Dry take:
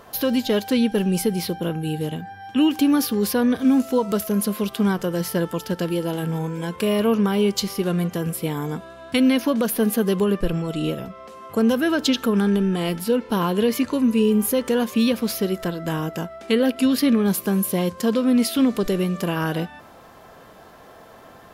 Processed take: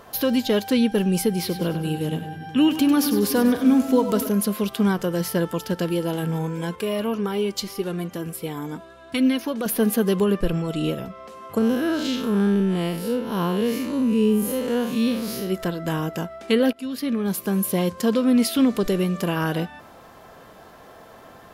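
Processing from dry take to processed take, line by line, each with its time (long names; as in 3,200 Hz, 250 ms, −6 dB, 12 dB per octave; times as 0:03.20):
0:01.30–0:04.29: echo with a time of its own for lows and highs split 340 Hz, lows 244 ms, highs 98 ms, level −10 dB
0:06.75–0:09.66: flanger 1.8 Hz, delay 2.1 ms, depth 1.5 ms, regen +45%
0:11.58–0:15.50: spectrum smeared in time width 130 ms
0:16.73–0:17.75: fade in, from −16.5 dB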